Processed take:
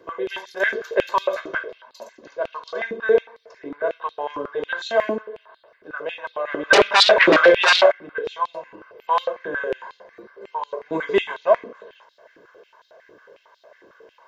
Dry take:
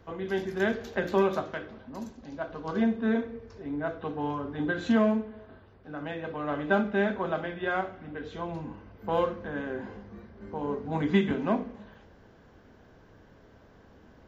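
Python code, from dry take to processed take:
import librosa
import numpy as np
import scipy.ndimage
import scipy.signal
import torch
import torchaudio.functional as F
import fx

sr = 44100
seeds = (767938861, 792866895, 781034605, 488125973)

y = x + 0.74 * np.pad(x, (int(1.9 * sr / 1000.0), 0))[:len(x)]
y = fx.fold_sine(y, sr, drive_db=12, ceiling_db=-14.0, at=(6.73, 7.92))
y = fx.filter_held_highpass(y, sr, hz=11.0, low_hz=310.0, high_hz=3900.0)
y = F.gain(torch.from_numpy(y), 2.0).numpy()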